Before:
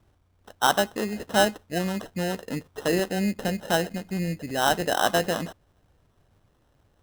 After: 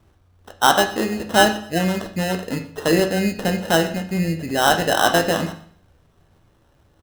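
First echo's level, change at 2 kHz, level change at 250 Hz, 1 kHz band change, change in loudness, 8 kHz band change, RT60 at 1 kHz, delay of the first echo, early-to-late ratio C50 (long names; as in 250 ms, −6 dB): −20.5 dB, +7.0 dB, +6.5 dB, +6.5 dB, +6.5 dB, +6.0 dB, 0.55 s, 122 ms, 10.5 dB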